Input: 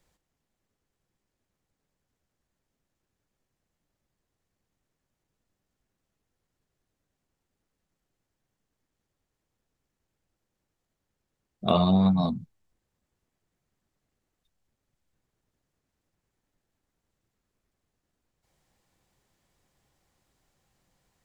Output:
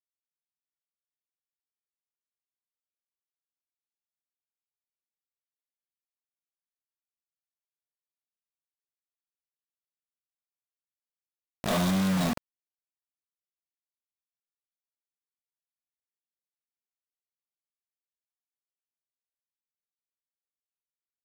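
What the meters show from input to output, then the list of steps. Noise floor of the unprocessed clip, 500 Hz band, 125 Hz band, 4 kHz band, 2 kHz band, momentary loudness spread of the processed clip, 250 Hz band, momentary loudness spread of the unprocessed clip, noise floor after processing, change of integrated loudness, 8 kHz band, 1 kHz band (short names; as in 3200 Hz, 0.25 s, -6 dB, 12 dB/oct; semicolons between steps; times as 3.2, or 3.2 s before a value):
-84 dBFS, -5.0 dB, -4.0 dB, -1.0 dB, +12.5 dB, 12 LU, -4.0 dB, 13 LU, under -85 dBFS, -4.0 dB, n/a, -4.0 dB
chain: soft clip -24 dBFS, distortion -9 dB; narrowing echo 81 ms, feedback 74%, band-pass 780 Hz, level -21.5 dB; bit-crush 5-bit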